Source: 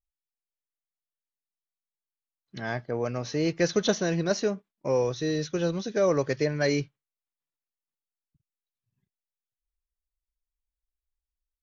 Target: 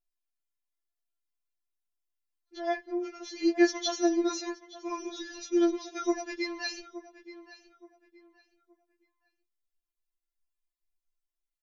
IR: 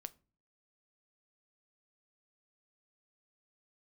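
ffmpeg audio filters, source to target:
-filter_complex "[0:a]asplit=2[s0][s1];[s1]adelay=872,lowpass=f=3100:p=1,volume=0.178,asplit=2[s2][s3];[s3]adelay=872,lowpass=f=3100:p=1,volume=0.3,asplit=2[s4][s5];[s5]adelay=872,lowpass=f=3100:p=1,volume=0.3[s6];[s2][s4][s6]amix=inputs=3:normalize=0[s7];[s0][s7]amix=inputs=2:normalize=0,afftfilt=real='re*4*eq(mod(b,16),0)':imag='im*4*eq(mod(b,16),0)':win_size=2048:overlap=0.75"

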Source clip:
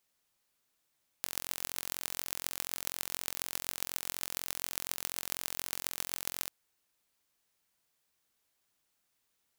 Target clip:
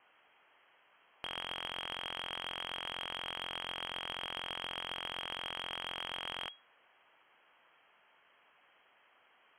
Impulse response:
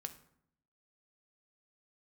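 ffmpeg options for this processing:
-filter_complex "[0:a]lowpass=f=2800:t=q:w=0.5098,lowpass=f=2800:t=q:w=0.6013,lowpass=f=2800:t=q:w=0.9,lowpass=f=2800:t=q:w=2.563,afreqshift=-3300,asoftclip=type=tanh:threshold=0.0168,asplit=2[s0][s1];[s1]highpass=f=720:p=1,volume=10,asoftclip=type=tanh:threshold=0.0168[s2];[s0][s2]amix=inputs=2:normalize=0,lowpass=f=1200:p=1,volume=0.501,volume=3.55"

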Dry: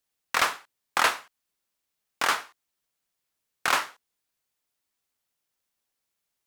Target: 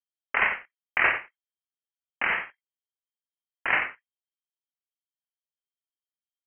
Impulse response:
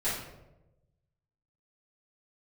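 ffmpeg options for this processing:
-filter_complex "[0:a]asettb=1/sr,asplit=3[s0][s1][s2];[s0]atrim=end=2.284[s3];[s1]atrim=start=2.28:end=3.7,asetpts=PTS-STARTPTS,afade=t=in:d=0.004:c=qsin,afade=t=out:st=1.416:d=0.004:c=qsin,volume=10,asoftclip=hard,volume=0.1[s4];[s2]atrim=start=3.696[s5];[s3][s4]acrossfade=d=0.004:c1=hsin:c2=qsin[s6];[s6][s5]acrossfade=d=0.004:c1=qsin:c2=hsin,anlmdn=0.398,asplit=2[s7][s8];[s8]aecho=0:1:37.9|90.38:0.501|0.316[s9];[s7][s9]amix=inputs=2:normalize=0,lowpass=f=2700:t=q:w=0.5098,lowpass=f=2700:t=q:w=0.6013,lowpass=f=2700:t=q:w=0.9,lowpass=f=2700:t=q:w=2.563,afreqshift=-3200"

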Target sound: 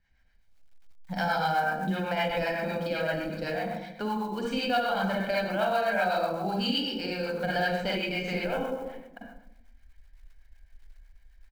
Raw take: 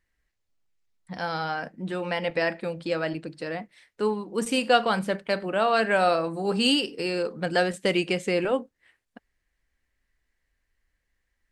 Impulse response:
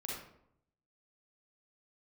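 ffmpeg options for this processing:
-filter_complex "[0:a]aecho=1:1:88|176|264:0.168|0.0487|0.0141,asubboost=boost=6.5:cutoff=53[s0];[1:a]atrim=start_sample=2205,asetrate=38808,aresample=44100[s1];[s0][s1]afir=irnorm=-1:irlink=0,acompressor=threshold=0.0251:ratio=5,lowpass=f=5600:w=0.5412,lowpass=f=5600:w=1.3066,aecho=1:1:1.3:0.62,acrusher=bits=7:mode=log:mix=0:aa=0.000001,acrossover=split=610[s2][s3];[s2]aeval=exprs='val(0)*(1-0.5/2+0.5/2*cos(2*PI*7.9*n/s))':c=same[s4];[s3]aeval=exprs='val(0)*(1-0.5/2-0.5/2*cos(2*PI*7.9*n/s))':c=same[s5];[s4][s5]amix=inputs=2:normalize=0,volume=2.37"

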